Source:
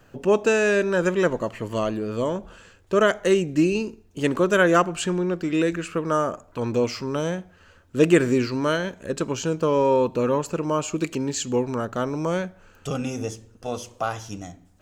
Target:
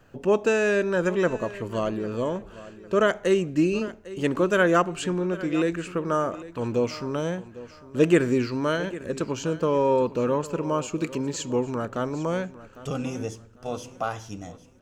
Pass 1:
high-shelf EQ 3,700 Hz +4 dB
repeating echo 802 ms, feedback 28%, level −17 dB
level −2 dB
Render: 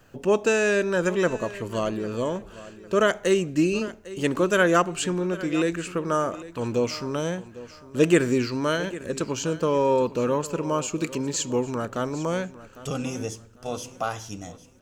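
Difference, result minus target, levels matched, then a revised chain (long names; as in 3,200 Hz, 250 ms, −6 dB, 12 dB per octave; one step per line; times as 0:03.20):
8,000 Hz band +6.0 dB
high-shelf EQ 3,700 Hz −4 dB
repeating echo 802 ms, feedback 28%, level −17 dB
level −2 dB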